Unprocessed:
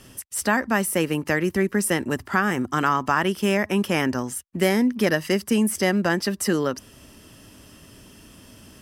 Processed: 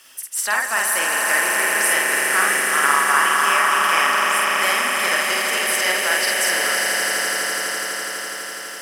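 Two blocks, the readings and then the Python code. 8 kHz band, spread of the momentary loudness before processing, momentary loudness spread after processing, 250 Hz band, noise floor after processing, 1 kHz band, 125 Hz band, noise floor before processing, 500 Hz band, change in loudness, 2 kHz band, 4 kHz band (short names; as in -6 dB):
+11.0 dB, 4 LU, 8 LU, -14.5 dB, -32 dBFS, +8.0 dB, under -15 dB, -50 dBFS, -2.5 dB, +5.5 dB, +10.5 dB, +11.0 dB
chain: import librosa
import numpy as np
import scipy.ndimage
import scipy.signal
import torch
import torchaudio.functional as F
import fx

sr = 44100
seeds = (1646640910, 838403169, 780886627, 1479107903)

y = scipy.signal.sosfilt(scipy.signal.butter(2, 1100.0, 'highpass', fs=sr, output='sos'), x)
y = fx.quant_dither(y, sr, seeds[0], bits=10, dither='none')
y = fx.doubler(y, sr, ms=49.0, db=-2)
y = fx.echo_swell(y, sr, ms=83, loudest=8, wet_db=-7.0)
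y = F.gain(torch.from_numpy(y), 3.0).numpy()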